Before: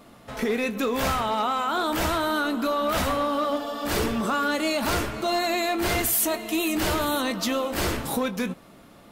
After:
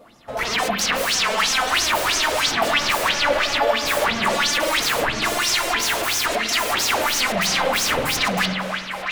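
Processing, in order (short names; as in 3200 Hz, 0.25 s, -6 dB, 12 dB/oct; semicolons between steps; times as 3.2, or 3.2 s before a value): reverb removal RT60 1.3 s; 2.29–4.11 comb 4.7 ms, depth 66%; AGC gain up to 16.5 dB; wavefolder -18.5 dBFS; narrowing echo 0.855 s, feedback 62%, band-pass 1900 Hz, level -5 dB; spring tank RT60 1.5 s, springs 48 ms, chirp 45 ms, DRR 2.5 dB; LFO bell 3 Hz 500–6200 Hz +16 dB; gain -5 dB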